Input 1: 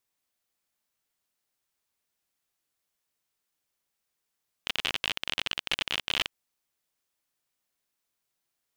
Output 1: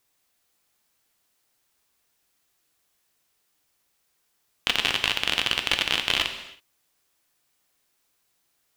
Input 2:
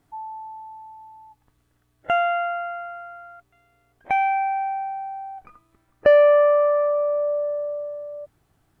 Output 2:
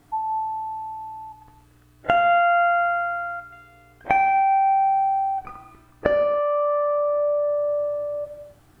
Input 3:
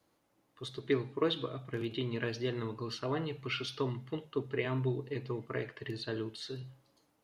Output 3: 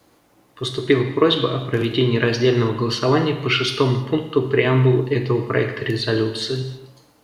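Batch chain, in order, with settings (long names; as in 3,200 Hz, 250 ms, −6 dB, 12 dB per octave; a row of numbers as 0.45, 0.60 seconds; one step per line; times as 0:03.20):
downward compressor 10 to 1, threshold −27 dBFS
reverb whose tail is shaped and stops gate 350 ms falling, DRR 6 dB
normalise the peak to −1.5 dBFS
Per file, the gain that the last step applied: +10.0, +9.5, +16.5 decibels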